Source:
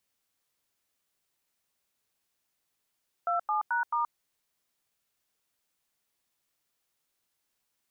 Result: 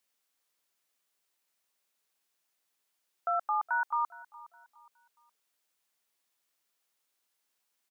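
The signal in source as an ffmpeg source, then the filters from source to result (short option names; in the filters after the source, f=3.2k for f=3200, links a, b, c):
-f lavfi -i "aevalsrc='0.0398*clip(min(mod(t,0.218),0.126-mod(t,0.218))/0.002,0,1)*(eq(floor(t/0.218),0)*(sin(2*PI*697*mod(t,0.218))+sin(2*PI*1336*mod(t,0.218)))+eq(floor(t/0.218),1)*(sin(2*PI*852*mod(t,0.218))+sin(2*PI*1209*mod(t,0.218)))+eq(floor(t/0.218),2)*(sin(2*PI*941*mod(t,0.218))+sin(2*PI*1477*mod(t,0.218)))+eq(floor(t/0.218),3)*(sin(2*PI*941*mod(t,0.218))+sin(2*PI*1209*mod(t,0.218))))':d=0.872:s=44100"
-filter_complex "[0:a]highpass=f=380:p=1,asplit=2[a][b];[b]adelay=415,lowpass=f=2k:p=1,volume=-18.5dB,asplit=2[c][d];[d]adelay=415,lowpass=f=2k:p=1,volume=0.39,asplit=2[e][f];[f]adelay=415,lowpass=f=2k:p=1,volume=0.39[g];[a][c][e][g]amix=inputs=4:normalize=0"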